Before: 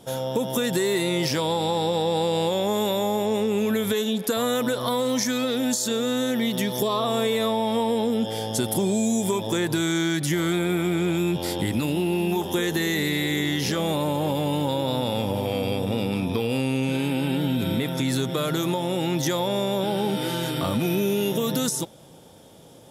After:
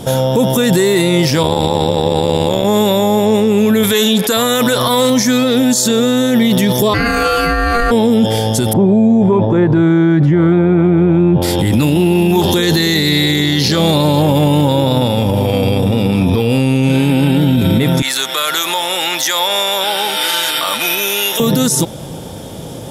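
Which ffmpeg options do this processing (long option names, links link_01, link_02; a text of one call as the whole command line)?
ffmpeg -i in.wav -filter_complex "[0:a]asettb=1/sr,asplit=3[link_01][link_02][link_03];[link_01]atrim=end=1.434[link_04];[link_02]atrim=start=1.43:end=2.65,asetpts=PTS-STARTPTS,afade=type=in:duration=0.004:curve=qsin,afade=type=out:start_time=1.216:duration=0.004:curve=qsin,tremolo=f=74:d=0.947[link_05];[link_03]atrim=start=2.646[link_06];[link_04][link_05]acrossfade=duration=0.004:curve1=hsin:curve2=qsin[link_07];[link_07][link_06]acrossfade=duration=0.004:curve1=qsin:curve2=hsin,asettb=1/sr,asplit=3[link_08][link_09][link_10];[link_08]atrim=end=3.834[link_11];[link_09]atrim=start=3.83:end=5.1,asetpts=PTS-STARTPTS,afade=type=in:duration=0.004:curve=qsin,afade=type=out:start_time=1.266:duration=0.004:curve=qsin,tiltshelf=frequency=750:gain=-4.5[link_12];[link_10]atrim=start=5.096[link_13];[link_11][link_12]acrossfade=duration=0.004:curve1=hsin:curve2=qsin[link_14];[link_14][link_13]acrossfade=duration=0.004:curve1=qsin:curve2=hsin,asplit=3[link_15][link_16][link_17];[link_15]afade=type=out:start_time=6.93:duration=0.02[link_18];[link_16]aeval=exprs='val(0)*sin(2*PI*940*n/s)':channel_layout=same,afade=type=in:start_time=6.93:duration=0.02,afade=type=out:start_time=7.9:duration=0.02[link_19];[link_17]afade=type=in:start_time=7.9:duration=0.02[link_20];[link_18][link_19][link_20]amix=inputs=3:normalize=0,asettb=1/sr,asplit=3[link_21][link_22][link_23];[link_21]atrim=end=8.734[link_24];[link_22]atrim=start=8.73:end=11.42,asetpts=PTS-STARTPTS,afade=type=in:duration=0.004:curve=qsin,afade=type=out:start_time=2.686:duration=0.004:curve=qsin,lowpass=1200[link_25];[link_23]atrim=start=11.416[link_26];[link_24][link_25]acrossfade=duration=0.004:curve1=hsin:curve2=qsin[link_27];[link_27][link_26]acrossfade=duration=0.004:curve1=qsin:curve2=hsin,asettb=1/sr,asplit=3[link_28][link_29][link_30];[link_28]atrim=end=12.394[link_31];[link_29]atrim=start=12.39:end=14.22,asetpts=PTS-STARTPTS,afade=type=in:duration=0.004:curve=qsin,afade=type=out:start_time=1.826:duration=0.004:curve=qsin,equalizer=frequency=4300:width_type=o:width=0.37:gain=14.5[link_32];[link_30]atrim=start=14.216[link_33];[link_31][link_32]acrossfade=duration=0.004:curve1=hsin:curve2=qsin[link_34];[link_34][link_33]acrossfade=duration=0.004:curve1=qsin:curve2=hsin,asettb=1/sr,asplit=3[link_35][link_36][link_37];[link_35]atrim=end=18.024[link_38];[link_36]atrim=start=18.02:end=21.4,asetpts=PTS-STARTPTS,afade=type=in:duration=0.004:curve=qsin,afade=type=out:start_time=3.376:duration=0.004:curve=qsin,highpass=1200[link_39];[link_37]atrim=start=21.396[link_40];[link_38][link_39]acrossfade=duration=0.004:curve1=hsin:curve2=qsin[link_41];[link_41][link_40]acrossfade=duration=0.004:curve1=qsin:curve2=hsin,lowshelf=frequency=180:gain=8.5,alimiter=level_in=22dB:limit=-1dB:release=50:level=0:latency=1,volume=-3.5dB" out.wav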